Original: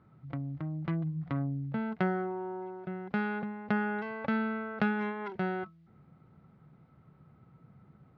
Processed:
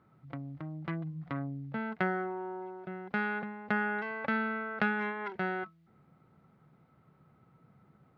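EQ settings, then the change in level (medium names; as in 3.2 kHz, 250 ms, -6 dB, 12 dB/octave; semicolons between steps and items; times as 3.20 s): bass shelf 190 Hz -9 dB; dynamic bell 1.8 kHz, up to +5 dB, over -50 dBFS, Q 1.4; 0.0 dB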